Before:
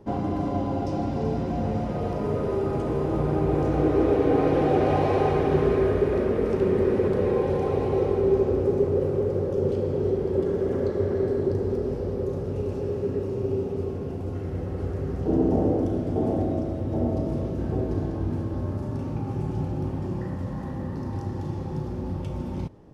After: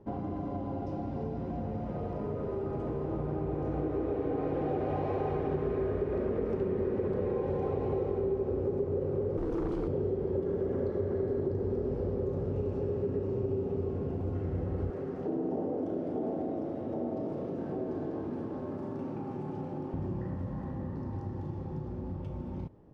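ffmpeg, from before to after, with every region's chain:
-filter_complex "[0:a]asettb=1/sr,asplit=3[a][b][c];[a]atrim=end=9.374[d];[b]atrim=start=9.37:end=9.88,asetpts=PTS-STARTPTS,afade=t=in:d=0.004:c=qsin,afade=t=out:st=0.506:d=0.004:c=qsin,highshelf=f=4.1k:g=12,asoftclip=type=hard:threshold=-23.5dB,afreqshift=-61[e];[c]atrim=start=9.876[f];[d][e]acrossfade=d=0.004:c1=hsin:c2=qsin[g];[g][f]acrossfade=d=0.004:c1=qsin:c2=hsin,asettb=1/sr,asplit=3[h][i][j];[h]atrim=end=14.904[k];[i]atrim=start=14.9:end=19.94,asetpts=PTS-STARTPTS,afade=t=in:d=0.004:c=qsin,afade=t=out:st=5.036:d=0.004:c=qsin,highpass=230,acompressor=threshold=-30dB:ratio=2:attack=3.2:release=140:knee=1:detection=peak,aecho=1:1:314:0.335,atrim=end_sample=222264[l];[j]atrim=start=19.936[m];[k][l]acrossfade=d=0.004:c1=hsin:c2=qsin[n];[n][m]acrossfade=d=0.004:c1=qsin:c2=hsin,acompressor=threshold=-26dB:ratio=6,lowpass=f=1.5k:p=1,dynaudnorm=f=550:g=13:m=4dB,volume=-5.5dB"

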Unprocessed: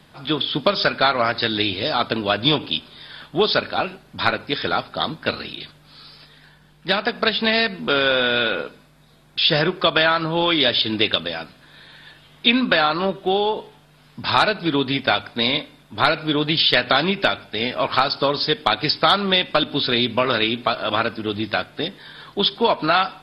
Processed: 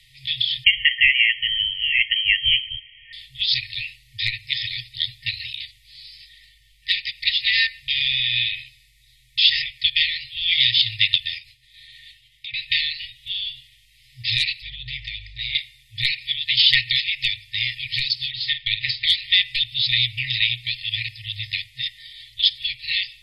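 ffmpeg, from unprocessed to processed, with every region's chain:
-filter_complex "[0:a]asettb=1/sr,asplit=3[a][b][c];[a]atrim=end=0.644[d];[b]atrim=start=0.64:end=3.13,asetpts=PTS-STARTPTS,afade=t=in:d=0.004:c=qsin,afade=t=out:st=2.486:d=0.004:c=qsin,highpass=f=150:w=0.5412,highpass=f=150:w=1.3066,lowpass=f=2.9k:t=q:w=0.5098,lowpass=f=2.9k:t=q:w=0.6013,lowpass=f=2.9k:t=q:w=0.9,lowpass=f=2.9k:t=q:w=2.563,afreqshift=-3400[e];[c]atrim=start=3.126[f];[d][e]acrossfade=d=0.004:c1=hsin:c2=qsin[g];[g][f]acrossfade=d=0.004:c1=qsin:c2=hsin,asettb=1/sr,asplit=3[h][i][j];[h]atrim=end=11.384[k];[i]atrim=start=11.38:end=12.54,asetpts=PTS-STARTPTS,afade=t=in:d=0.004:c=qsin,afade=t=out:st=1.156:d=0.004:c=qsin,agate=range=-33dB:threshold=-45dB:ratio=3:release=100:detection=peak,acompressor=threshold=-35dB:ratio=5:attack=3.2:release=140:knee=1:detection=peak[l];[j]atrim=start=12.536[m];[k][l]acrossfade=d=0.004:c1=hsin:c2=qsin[n];[n][m]acrossfade=d=0.004:c1=qsin:c2=hsin,asettb=1/sr,asplit=3[o][p][q];[o]atrim=end=14.624[r];[p]atrim=start=14.62:end=15.55,asetpts=PTS-STARTPTS,afade=t=in:d=0.004:c=qsin,afade=t=out:st=0.926:d=0.004:c=qsin,lowpass=4.5k,acompressor=threshold=-26dB:ratio=3:attack=3.2:release=140:knee=1:detection=peak,aeval=exprs='val(0)+0.00794*(sin(2*PI*50*n/s)+sin(2*PI*2*50*n/s)/2+sin(2*PI*3*50*n/s)/3+sin(2*PI*4*50*n/s)/4+sin(2*PI*5*50*n/s)/5)':c=same[s];[q]atrim=start=15.546[t];[r][s]acrossfade=d=0.004:c1=hsin:c2=qsin[u];[u][t]acrossfade=d=0.004:c1=qsin:c2=hsin,asettb=1/sr,asplit=3[v][w][x];[v]atrim=end=18.314[y];[w]atrim=start=18.31:end=19.07,asetpts=PTS-STARTPTS,afade=t=in:d=0.004:c=qsin,afade=t=out:st=0.756:d=0.004:c=qsin,lowpass=f=3.8k:w=0.5412,lowpass=f=3.8k:w=1.3066,asplit=2[z][aa];[aa]adelay=47,volume=-10dB[ab];[z][ab]amix=inputs=2:normalize=0,atrim=end_sample=33516[ac];[x]atrim=start=19.066[ad];[y][ac]acrossfade=d=0.004:c1=hsin:c2=qsin[ae];[ae][ad]acrossfade=d=0.004:c1=qsin:c2=hsin,afftfilt=real='re*(1-between(b*sr/4096,130,1800))':imag='im*(1-between(b*sr/4096,130,1800))':win_size=4096:overlap=0.75,equalizer=f=90:t=o:w=0.28:g=-13.5,volume=2.5dB"

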